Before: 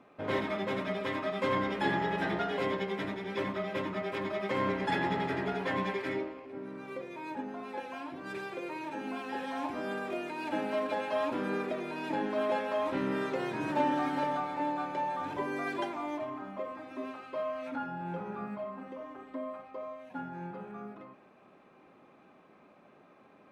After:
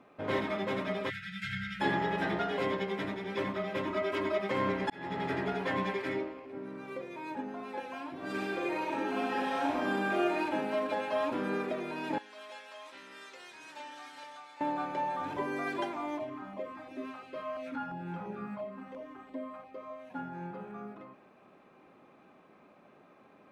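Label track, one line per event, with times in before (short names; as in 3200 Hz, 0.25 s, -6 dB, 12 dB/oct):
1.100000	1.810000	spectral delete 200–1300 Hz
3.870000	4.380000	comb 3.1 ms, depth 86%
4.900000	5.310000	fade in
8.150000	10.390000	reverb throw, RT60 0.96 s, DRR -4 dB
12.180000	14.610000	band-pass 6500 Hz, Q 0.83
16.190000	19.900000	LFO notch saw down 2.9 Hz 290–1700 Hz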